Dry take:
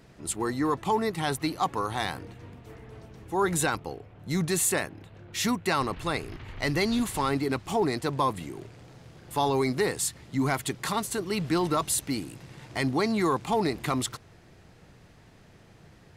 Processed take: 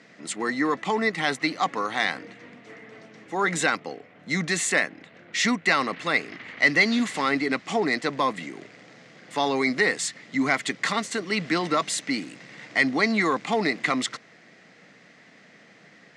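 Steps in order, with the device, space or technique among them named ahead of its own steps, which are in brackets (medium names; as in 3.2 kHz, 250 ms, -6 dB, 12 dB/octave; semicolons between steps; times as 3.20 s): television speaker (cabinet simulation 200–7200 Hz, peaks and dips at 370 Hz -8 dB, 910 Hz -7 dB, 2 kHz +10 dB); trim +4.5 dB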